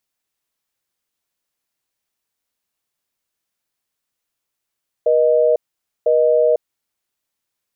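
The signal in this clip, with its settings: call progress tone busy tone, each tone -14 dBFS 1.56 s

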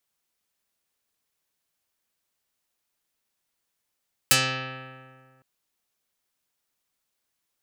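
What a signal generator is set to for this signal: plucked string C3, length 1.11 s, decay 1.95 s, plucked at 0.37, dark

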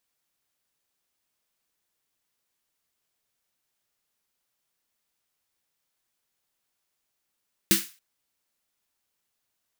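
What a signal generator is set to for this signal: snare drum length 0.28 s, tones 200 Hz, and 330 Hz, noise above 1.5 kHz, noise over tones 2.5 dB, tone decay 0.19 s, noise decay 0.34 s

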